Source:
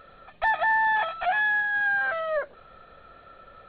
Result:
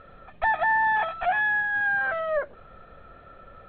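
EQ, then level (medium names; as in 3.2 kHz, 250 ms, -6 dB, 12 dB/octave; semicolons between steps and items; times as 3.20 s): low-pass 2.9 kHz 12 dB/octave; bass shelf 300 Hz +7 dB; 0.0 dB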